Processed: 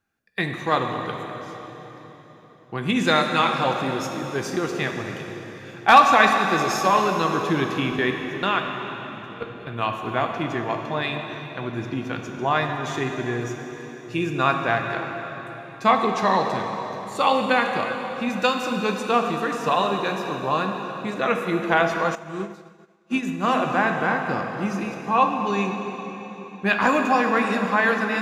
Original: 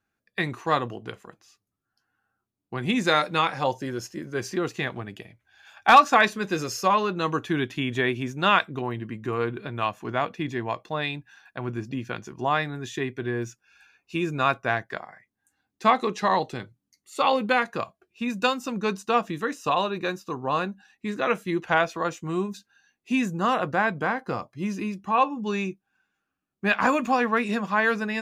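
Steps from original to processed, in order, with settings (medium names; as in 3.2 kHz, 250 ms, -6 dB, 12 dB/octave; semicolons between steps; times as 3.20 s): 7.92–9.67 s: level held to a coarse grid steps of 24 dB; on a send at -3 dB: reverberation RT60 4.1 s, pre-delay 5 ms; 22.15–23.47 s: on the sum: upward expansion 2.5:1, over -38 dBFS; trim +1.5 dB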